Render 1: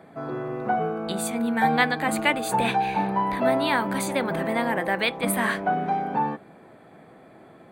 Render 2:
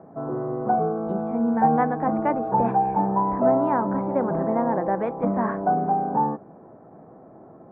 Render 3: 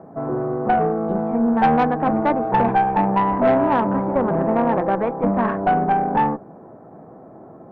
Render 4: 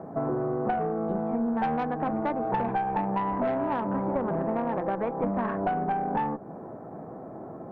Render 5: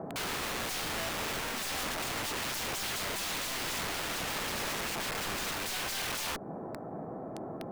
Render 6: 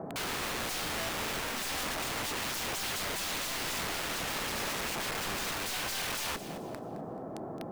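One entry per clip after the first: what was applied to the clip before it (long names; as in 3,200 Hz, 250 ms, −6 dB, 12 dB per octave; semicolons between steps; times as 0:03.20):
low-pass filter 1,100 Hz 24 dB per octave; level +3 dB
tube saturation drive 16 dB, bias 0.45; level +6.5 dB
downward compressor 6 to 1, threshold −27 dBFS, peak gain reduction 14 dB; level +1.5 dB
wrap-around overflow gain 30.5 dB
feedback echo at a low word length 216 ms, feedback 35%, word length 11 bits, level −12.5 dB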